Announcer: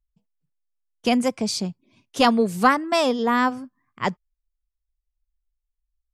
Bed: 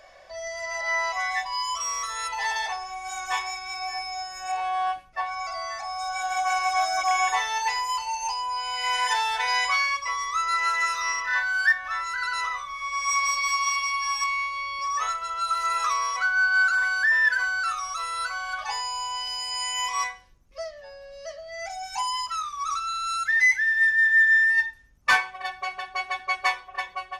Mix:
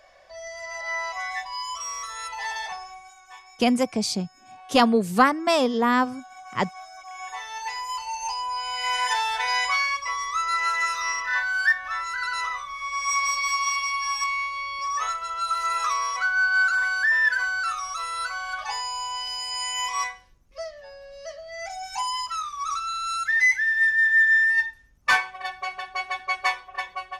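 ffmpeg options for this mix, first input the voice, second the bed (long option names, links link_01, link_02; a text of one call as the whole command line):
ffmpeg -i stem1.wav -i stem2.wav -filter_complex "[0:a]adelay=2550,volume=-0.5dB[link_01];[1:a]volume=14.5dB,afade=type=out:start_time=2.82:duration=0.32:silence=0.188365,afade=type=in:start_time=7.11:duration=1.3:silence=0.125893[link_02];[link_01][link_02]amix=inputs=2:normalize=0" out.wav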